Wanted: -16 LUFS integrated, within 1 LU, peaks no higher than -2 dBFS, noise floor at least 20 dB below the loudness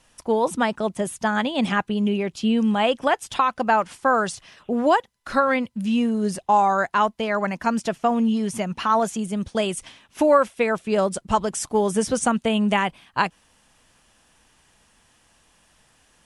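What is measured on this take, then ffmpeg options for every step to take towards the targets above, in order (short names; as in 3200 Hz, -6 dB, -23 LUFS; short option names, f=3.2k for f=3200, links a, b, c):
loudness -22.5 LUFS; peak -5.5 dBFS; loudness target -16.0 LUFS
-> -af "volume=6.5dB,alimiter=limit=-2dB:level=0:latency=1"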